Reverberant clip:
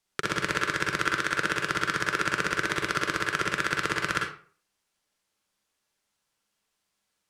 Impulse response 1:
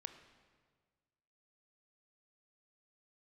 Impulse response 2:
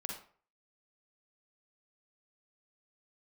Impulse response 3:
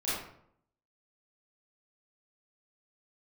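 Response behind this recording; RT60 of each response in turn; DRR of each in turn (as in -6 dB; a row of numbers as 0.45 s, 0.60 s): 2; 1.6 s, 0.45 s, 0.65 s; 8.5 dB, 0.0 dB, -11.5 dB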